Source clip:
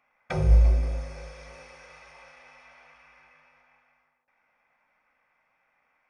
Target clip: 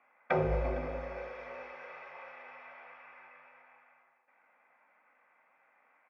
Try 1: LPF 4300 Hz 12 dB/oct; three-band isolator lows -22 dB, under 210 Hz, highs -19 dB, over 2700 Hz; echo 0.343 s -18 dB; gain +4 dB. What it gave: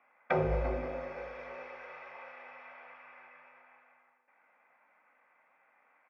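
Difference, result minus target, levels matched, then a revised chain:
echo 0.115 s early
LPF 4300 Hz 12 dB/oct; three-band isolator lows -22 dB, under 210 Hz, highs -19 dB, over 2700 Hz; echo 0.458 s -18 dB; gain +4 dB

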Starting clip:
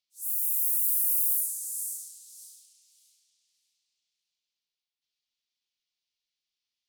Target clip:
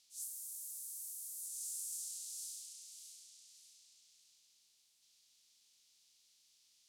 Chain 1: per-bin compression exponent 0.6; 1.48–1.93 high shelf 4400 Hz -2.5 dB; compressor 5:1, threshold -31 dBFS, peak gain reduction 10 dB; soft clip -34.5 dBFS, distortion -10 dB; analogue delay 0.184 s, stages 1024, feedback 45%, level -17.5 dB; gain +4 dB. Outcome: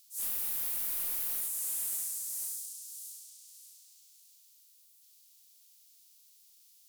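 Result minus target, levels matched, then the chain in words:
8000 Hz band -4.5 dB
per-bin compression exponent 0.6; 1.48–1.93 high shelf 4400 Hz -2.5 dB; compressor 5:1, threshold -31 dBFS, peak gain reduction 10 dB; LPF 5800 Hz 12 dB/oct; soft clip -34.5 dBFS, distortion -31 dB; analogue delay 0.184 s, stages 1024, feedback 45%, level -17.5 dB; gain +4 dB

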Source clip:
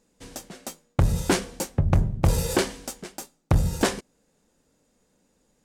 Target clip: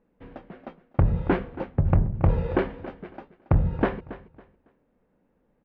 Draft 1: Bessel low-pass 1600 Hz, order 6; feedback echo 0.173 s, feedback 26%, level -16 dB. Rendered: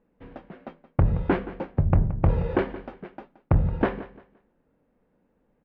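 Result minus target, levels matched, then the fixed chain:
echo 0.104 s early
Bessel low-pass 1600 Hz, order 6; feedback echo 0.277 s, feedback 26%, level -16 dB

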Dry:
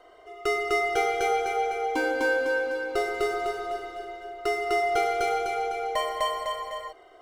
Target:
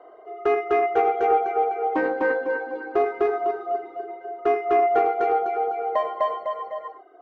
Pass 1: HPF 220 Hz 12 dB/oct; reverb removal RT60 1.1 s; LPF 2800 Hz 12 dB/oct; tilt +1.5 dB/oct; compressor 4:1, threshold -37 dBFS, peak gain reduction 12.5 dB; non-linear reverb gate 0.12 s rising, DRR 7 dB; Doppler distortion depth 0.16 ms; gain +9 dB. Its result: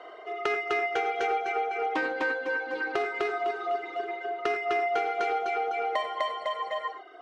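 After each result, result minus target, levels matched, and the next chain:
compressor: peak gain reduction +12.5 dB; 2000 Hz band +8.0 dB
HPF 220 Hz 12 dB/oct; reverb removal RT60 1.1 s; LPF 2800 Hz 12 dB/oct; tilt +1.5 dB/oct; non-linear reverb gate 0.12 s rising, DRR 7 dB; Doppler distortion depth 0.16 ms; gain +9 dB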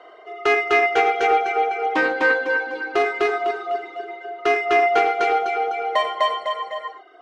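2000 Hz band +8.0 dB
HPF 220 Hz 12 dB/oct; reverb removal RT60 1.1 s; LPF 890 Hz 12 dB/oct; tilt +1.5 dB/oct; non-linear reverb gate 0.12 s rising, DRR 7 dB; Doppler distortion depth 0.16 ms; gain +9 dB

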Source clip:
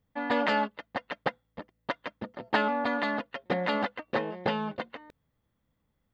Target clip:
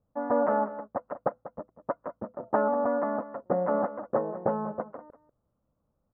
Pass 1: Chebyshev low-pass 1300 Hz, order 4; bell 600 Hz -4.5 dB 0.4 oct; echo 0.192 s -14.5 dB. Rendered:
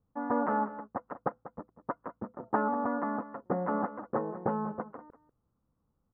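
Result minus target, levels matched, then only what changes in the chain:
500 Hz band -3.5 dB
change: bell 600 Hz +7 dB 0.4 oct

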